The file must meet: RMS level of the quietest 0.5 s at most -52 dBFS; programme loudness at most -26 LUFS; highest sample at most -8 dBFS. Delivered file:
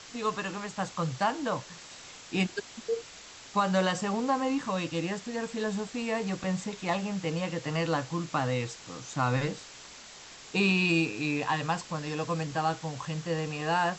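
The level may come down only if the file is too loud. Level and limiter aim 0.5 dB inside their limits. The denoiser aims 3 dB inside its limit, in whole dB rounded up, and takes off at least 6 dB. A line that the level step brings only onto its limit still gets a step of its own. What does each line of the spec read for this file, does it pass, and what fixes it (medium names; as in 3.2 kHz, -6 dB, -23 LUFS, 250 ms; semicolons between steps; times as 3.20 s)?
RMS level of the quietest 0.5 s -48 dBFS: fail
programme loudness -30.5 LUFS: pass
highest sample -14.5 dBFS: pass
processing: noise reduction 7 dB, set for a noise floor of -48 dBFS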